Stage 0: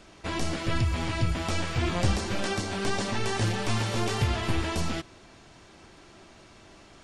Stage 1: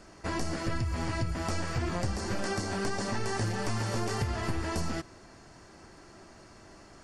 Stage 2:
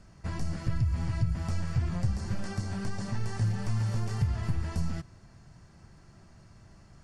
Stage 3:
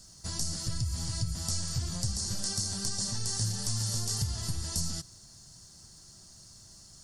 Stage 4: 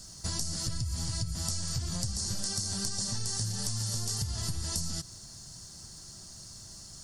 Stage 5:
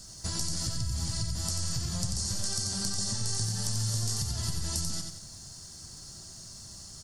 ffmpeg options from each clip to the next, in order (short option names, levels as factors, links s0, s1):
-af "superequalizer=12b=0.501:13b=0.355,acompressor=threshold=0.0447:ratio=6"
-af "lowshelf=f=220:t=q:w=1.5:g=11,volume=0.398"
-af "aexciter=amount=7.3:drive=8.6:freq=3600,volume=0.562"
-af "acompressor=threshold=0.0178:ratio=6,volume=1.88"
-af "aecho=1:1:90|180|270|360:0.562|0.202|0.0729|0.0262"